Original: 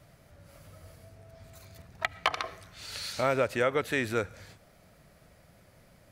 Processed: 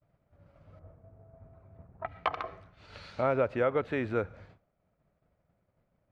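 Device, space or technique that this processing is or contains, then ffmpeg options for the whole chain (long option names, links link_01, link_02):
hearing-loss simulation: -filter_complex "[0:a]equalizer=frequency=1800:width_type=o:width=0.5:gain=-5,asettb=1/sr,asplit=3[link_01][link_02][link_03];[link_01]atrim=end=0.794[link_04];[link_02]atrim=start=0.79:end=2.06,asetpts=PTS-STARTPTS,afade=type=in:duration=0.004:curve=qsin,afade=type=out:start_time=1.266:duration=0.004:curve=qsin,lowpass=1200[link_05];[link_03]atrim=start=2.056[link_06];[link_04][link_05]acrossfade=duration=0.004:curve1=hsin:curve2=qsin[link_07];[link_07][link_06]acrossfade=duration=0.004:curve1=qsin:curve2=hsin,lowpass=1800,agate=range=-33dB:threshold=-48dB:ratio=3:detection=peak"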